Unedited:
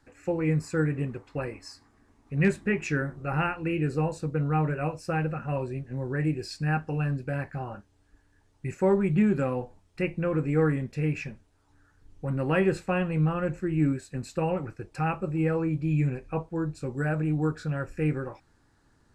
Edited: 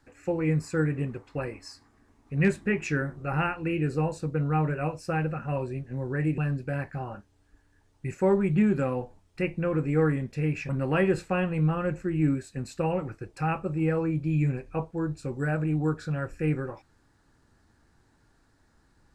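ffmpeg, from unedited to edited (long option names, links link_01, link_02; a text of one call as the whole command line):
ffmpeg -i in.wav -filter_complex "[0:a]asplit=3[link_01][link_02][link_03];[link_01]atrim=end=6.382[link_04];[link_02]atrim=start=6.978:end=11.292[link_05];[link_03]atrim=start=12.268[link_06];[link_04][link_05]acrossfade=duration=0.004:curve1=hsin:curve2=hsin[link_07];[link_07][link_06]acrossfade=duration=0.004:curve1=hsin:curve2=hsin" out.wav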